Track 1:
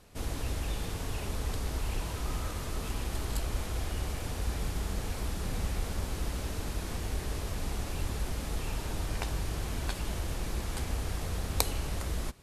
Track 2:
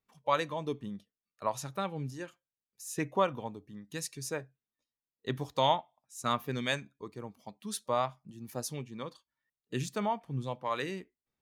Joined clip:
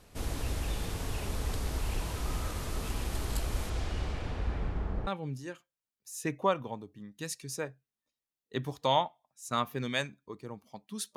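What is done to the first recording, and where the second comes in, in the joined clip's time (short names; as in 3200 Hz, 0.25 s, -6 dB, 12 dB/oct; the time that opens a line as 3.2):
track 1
3.69–5.07 LPF 7600 Hz -> 1100 Hz
5.07 switch to track 2 from 1.8 s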